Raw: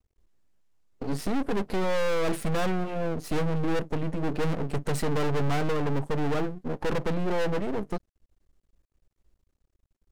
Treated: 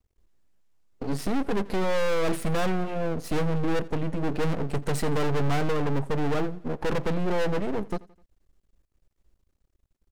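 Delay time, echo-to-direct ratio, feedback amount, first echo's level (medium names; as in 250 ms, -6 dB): 85 ms, -21.0 dB, 50%, -22.0 dB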